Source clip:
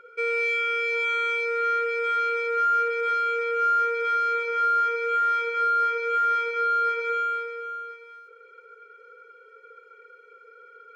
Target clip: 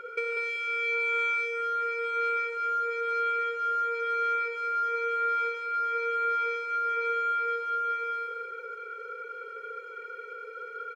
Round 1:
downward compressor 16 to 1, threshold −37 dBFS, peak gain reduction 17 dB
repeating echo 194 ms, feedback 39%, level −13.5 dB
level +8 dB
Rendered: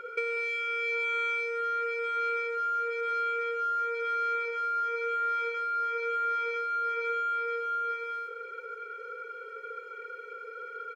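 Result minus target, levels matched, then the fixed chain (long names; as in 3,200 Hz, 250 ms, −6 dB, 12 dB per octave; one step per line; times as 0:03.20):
echo-to-direct −8.5 dB
downward compressor 16 to 1, threshold −37 dBFS, peak gain reduction 17 dB
repeating echo 194 ms, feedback 39%, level −5 dB
level +8 dB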